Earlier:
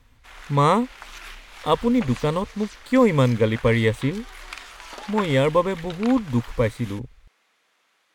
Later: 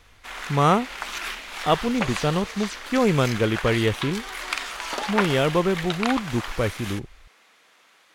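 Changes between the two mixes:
speech: remove ripple EQ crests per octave 1, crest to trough 11 dB; background +9.0 dB

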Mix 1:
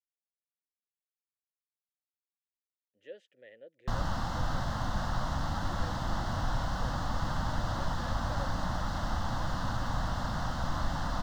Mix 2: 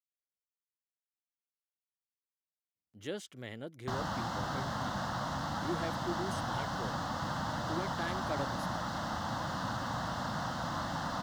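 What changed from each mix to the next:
speech: remove vowel filter e; background: add HPF 140 Hz 12 dB/oct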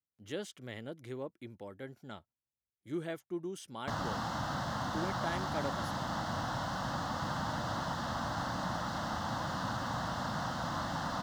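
speech: entry -2.75 s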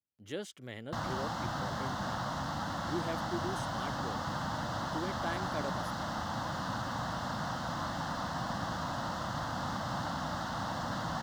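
background: entry -2.95 s

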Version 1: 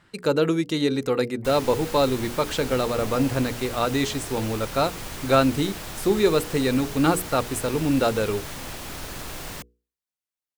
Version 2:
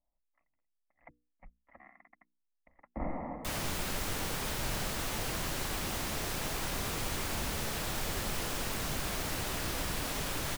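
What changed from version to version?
speech: muted; second sound: entry +2.00 s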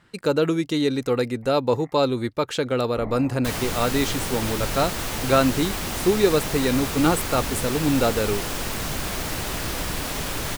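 speech: unmuted; second sound +7.0 dB; master: remove notches 60/120/180/240/300/360/420/480 Hz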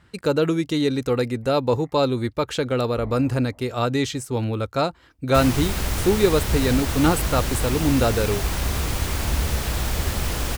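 first sound -7.5 dB; second sound: entry +1.90 s; master: add bell 62 Hz +14.5 dB 1.1 oct

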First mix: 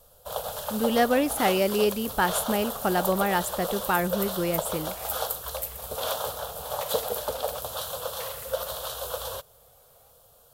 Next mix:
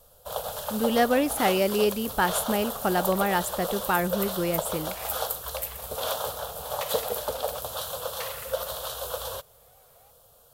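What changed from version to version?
second sound +5.0 dB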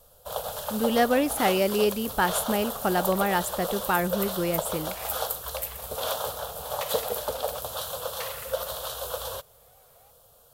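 none

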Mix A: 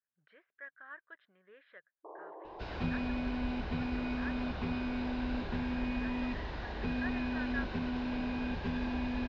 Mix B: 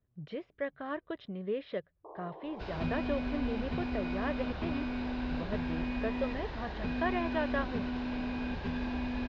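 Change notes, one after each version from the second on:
speech: remove band-pass 1600 Hz, Q 5.5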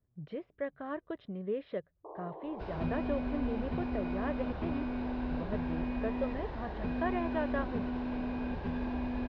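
first sound +3.0 dB; master: add high shelf 2300 Hz -11.5 dB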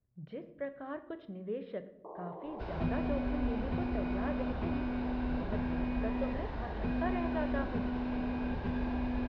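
speech -4.5 dB; reverb: on, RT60 0.80 s

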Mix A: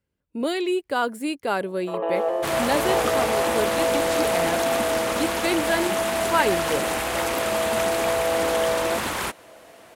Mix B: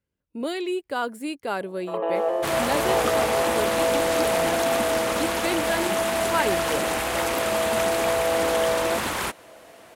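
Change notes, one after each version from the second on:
speech -3.5 dB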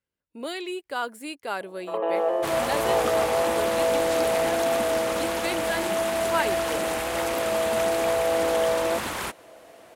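speech: add low shelf 420 Hz -10.5 dB; second sound -3.5 dB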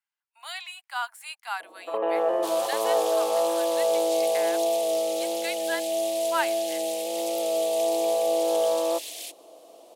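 speech: add steep high-pass 740 Hz 72 dB/oct; second sound: add inverse Chebyshev high-pass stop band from 1200 Hz, stop band 50 dB

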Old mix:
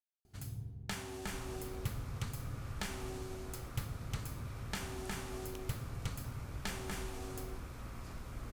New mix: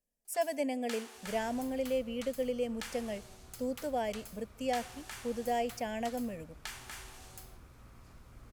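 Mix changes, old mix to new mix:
speech: unmuted; first sound: add HPF 930 Hz 12 dB/oct; second sound -9.0 dB

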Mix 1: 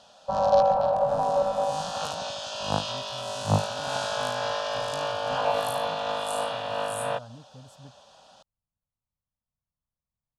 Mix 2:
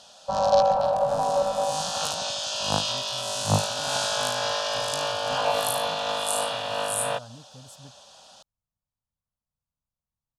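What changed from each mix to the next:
master: add high shelf 3500 Hz +12 dB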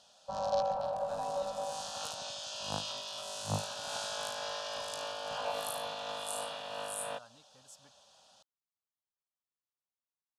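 speech: add band-pass 3000 Hz, Q 0.6; background -12.0 dB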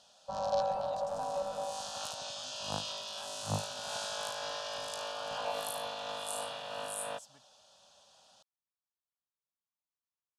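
speech: entry -0.50 s

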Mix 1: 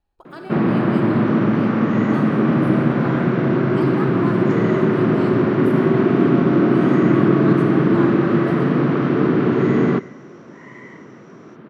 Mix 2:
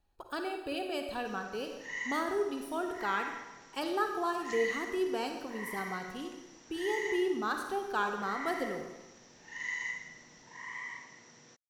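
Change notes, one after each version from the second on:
first sound: muted; master: add high shelf 3900 Hz +8 dB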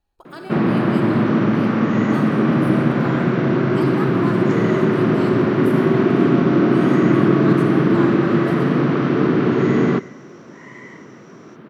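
first sound: unmuted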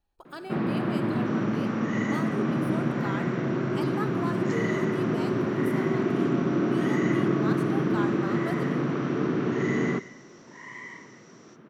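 speech: send -9.5 dB; first sound -10.0 dB

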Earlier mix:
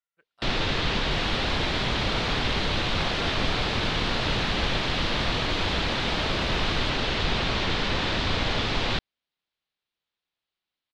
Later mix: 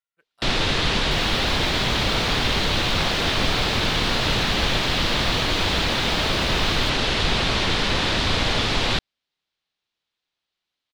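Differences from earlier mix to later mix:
first sound +3.5 dB; master: remove air absorption 86 m

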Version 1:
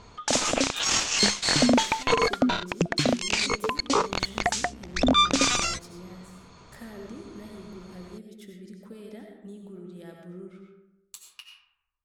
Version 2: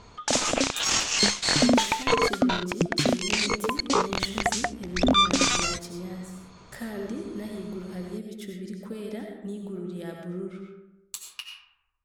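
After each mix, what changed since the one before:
speech +7.5 dB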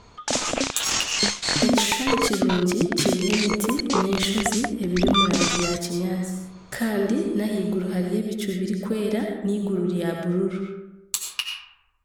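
speech +11.0 dB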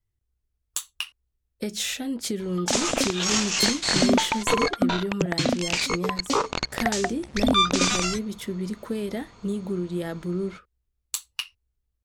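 background: entry +2.40 s; reverb: off

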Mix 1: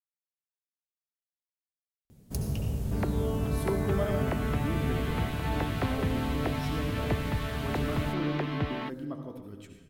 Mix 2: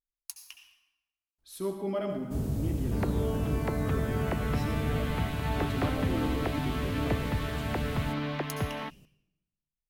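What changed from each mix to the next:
speech: entry -2.05 s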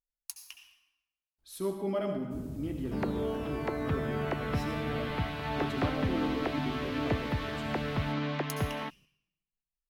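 first sound -11.5 dB

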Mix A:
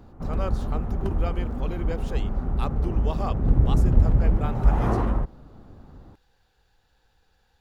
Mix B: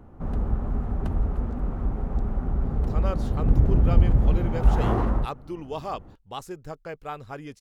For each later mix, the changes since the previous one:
speech: entry +2.65 s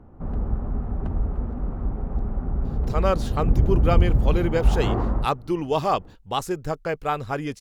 speech +10.0 dB; background: add LPF 1600 Hz 6 dB/oct

